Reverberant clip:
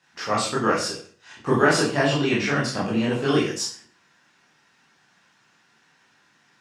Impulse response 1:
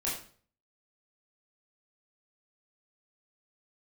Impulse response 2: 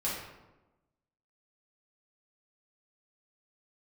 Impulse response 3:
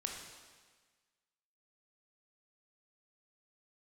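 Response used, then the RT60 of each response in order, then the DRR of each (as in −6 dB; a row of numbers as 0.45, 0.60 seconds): 1; 0.45, 1.1, 1.5 seconds; −7.0, −8.0, 0.5 decibels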